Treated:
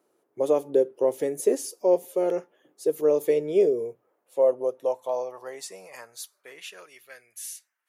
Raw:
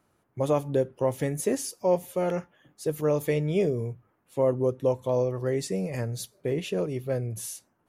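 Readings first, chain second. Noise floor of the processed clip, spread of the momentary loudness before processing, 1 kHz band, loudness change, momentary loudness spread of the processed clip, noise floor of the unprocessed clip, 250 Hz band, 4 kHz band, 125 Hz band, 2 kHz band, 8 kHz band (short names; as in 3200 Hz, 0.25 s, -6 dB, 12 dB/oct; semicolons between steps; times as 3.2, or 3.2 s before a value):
-75 dBFS, 9 LU, -1.0 dB, +3.0 dB, 19 LU, -71 dBFS, -2.5 dB, n/a, -19.0 dB, -4.0 dB, -0.5 dB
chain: bell 1600 Hz -6 dB 2.6 oct; high-pass sweep 400 Hz -> 1900 Hz, 3.63–7.35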